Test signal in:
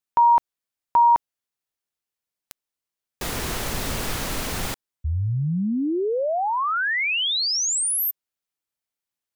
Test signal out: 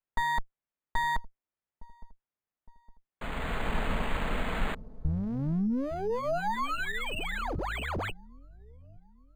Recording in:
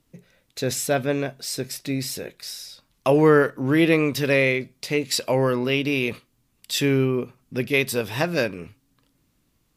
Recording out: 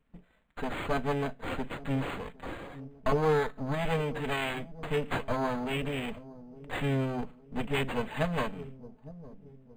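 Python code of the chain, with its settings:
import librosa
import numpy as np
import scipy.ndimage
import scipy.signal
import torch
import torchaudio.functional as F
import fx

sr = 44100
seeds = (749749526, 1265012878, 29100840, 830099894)

y = fx.lower_of_two(x, sr, delay_ms=4.6)
y = fx.low_shelf(y, sr, hz=71.0, db=6.5)
y = fx.rider(y, sr, range_db=3, speed_s=0.5)
y = fx.peak_eq(y, sr, hz=360.0, db=-13.0, octaves=0.23)
y = fx.echo_wet_lowpass(y, sr, ms=862, feedback_pct=42, hz=460.0, wet_db=-13.5)
y = np.interp(np.arange(len(y)), np.arange(len(y))[::8], y[::8])
y = y * librosa.db_to_amplitude(-5.0)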